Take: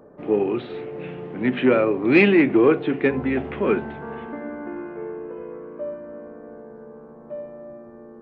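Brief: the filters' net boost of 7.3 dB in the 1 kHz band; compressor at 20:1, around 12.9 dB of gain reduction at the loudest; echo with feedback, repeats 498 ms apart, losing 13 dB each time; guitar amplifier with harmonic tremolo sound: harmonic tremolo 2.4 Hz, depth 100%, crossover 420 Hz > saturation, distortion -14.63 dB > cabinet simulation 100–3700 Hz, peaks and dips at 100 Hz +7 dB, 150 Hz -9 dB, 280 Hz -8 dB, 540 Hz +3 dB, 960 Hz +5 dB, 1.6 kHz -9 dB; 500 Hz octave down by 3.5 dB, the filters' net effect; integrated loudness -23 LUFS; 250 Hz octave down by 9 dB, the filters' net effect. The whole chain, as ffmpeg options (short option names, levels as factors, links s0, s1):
-filter_complex "[0:a]equalizer=f=250:t=o:g=-7,equalizer=f=500:t=o:g=-4,equalizer=f=1000:t=o:g=8.5,acompressor=threshold=0.0562:ratio=20,aecho=1:1:498|996|1494:0.224|0.0493|0.0108,acrossover=split=420[s0][s1];[s0]aeval=exprs='val(0)*(1-1/2+1/2*cos(2*PI*2.4*n/s))':c=same[s2];[s1]aeval=exprs='val(0)*(1-1/2-1/2*cos(2*PI*2.4*n/s))':c=same[s3];[s2][s3]amix=inputs=2:normalize=0,asoftclip=threshold=0.0355,highpass=100,equalizer=f=100:t=q:w=4:g=7,equalizer=f=150:t=q:w=4:g=-9,equalizer=f=280:t=q:w=4:g=-8,equalizer=f=540:t=q:w=4:g=3,equalizer=f=960:t=q:w=4:g=5,equalizer=f=1600:t=q:w=4:g=-9,lowpass=f=3700:w=0.5412,lowpass=f=3700:w=1.3066,volume=7.08"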